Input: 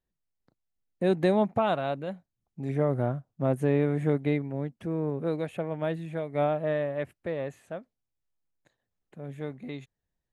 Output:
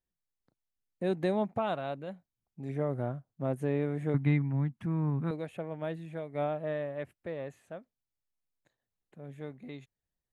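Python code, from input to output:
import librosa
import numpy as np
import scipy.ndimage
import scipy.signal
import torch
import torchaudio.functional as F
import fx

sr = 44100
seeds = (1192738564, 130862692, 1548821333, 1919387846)

y = fx.graphic_eq(x, sr, hz=(125, 250, 500, 1000, 2000), db=(12, 6, -12, 9, 5), at=(4.14, 5.31))
y = F.gain(torch.from_numpy(y), -6.0).numpy()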